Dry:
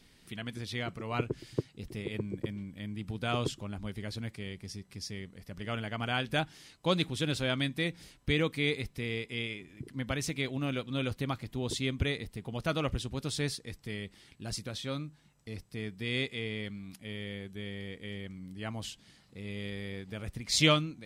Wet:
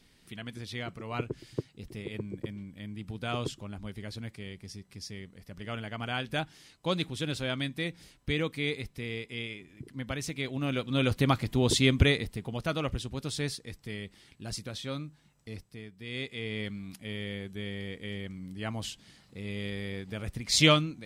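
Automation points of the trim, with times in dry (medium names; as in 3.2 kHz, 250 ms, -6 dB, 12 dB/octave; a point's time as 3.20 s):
10.36 s -1.5 dB
11.28 s +9 dB
12.00 s +9 dB
12.71 s 0 dB
15.55 s 0 dB
15.91 s -9 dB
16.61 s +3 dB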